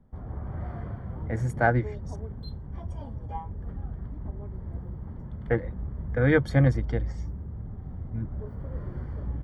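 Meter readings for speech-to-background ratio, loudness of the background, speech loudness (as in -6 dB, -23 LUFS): 10.5 dB, -37.0 LUFS, -26.5 LUFS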